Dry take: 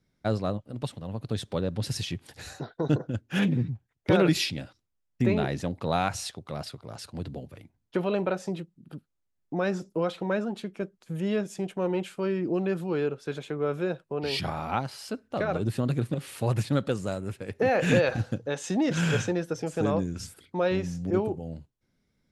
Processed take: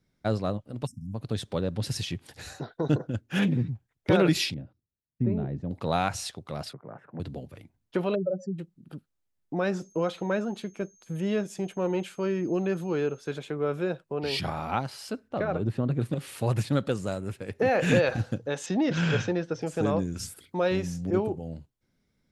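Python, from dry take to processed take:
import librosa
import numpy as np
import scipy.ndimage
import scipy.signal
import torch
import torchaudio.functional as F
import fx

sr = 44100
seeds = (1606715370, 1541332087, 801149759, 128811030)

y = fx.spec_erase(x, sr, start_s=0.87, length_s=0.27, low_hz=280.0, high_hz=5100.0)
y = fx.bandpass_q(y, sr, hz=120.0, q=0.6, at=(4.54, 5.71))
y = fx.ellip_bandpass(y, sr, low_hz=140.0, high_hz=1800.0, order=3, stop_db=40, at=(6.73, 7.2))
y = fx.spec_expand(y, sr, power=3.7, at=(8.14, 8.58), fade=0.02)
y = fx.dmg_tone(y, sr, hz=6400.0, level_db=-59.0, at=(9.73, 13.3), fade=0.02)
y = fx.lowpass(y, sr, hz=fx.line((15.28, 2400.0), (15.99, 1100.0)), slope=6, at=(15.28, 15.99), fade=0.02)
y = fx.lowpass(y, sr, hz=5600.0, slope=24, at=(18.66, 19.62))
y = fx.high_shelf(y, sr, hz=7300.0, db=9.0, at=(20.12, 21.01))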